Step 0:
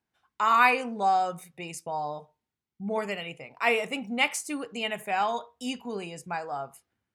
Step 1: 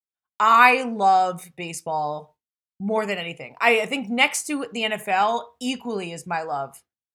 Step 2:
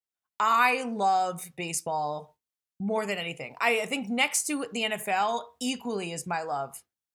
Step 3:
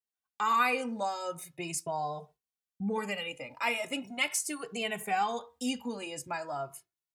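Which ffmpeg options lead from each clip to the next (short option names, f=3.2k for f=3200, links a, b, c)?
-af "agate=range=-33dB:threshold=-51dB:ratio=3:detection=peak,volume=6.5dB"
-af "acompressor=threshold=-34dB:ratio=1.5,adynamicequalizer=threshold=0.00631:dfrequency=4400:dqfactor=0.7:tfrequency=4400:tqfactor=0.7:attack=5:release=100:ratio=0.375:range=3:mode=boostabove:tftype=highshelf"
-filter_complex "[0:a]asplit=2[a][b];[b]adelay=2.2,afreqshift=0.4[c];[a][c]amix=inputs=2:normalize=1,volume=-1.5dB"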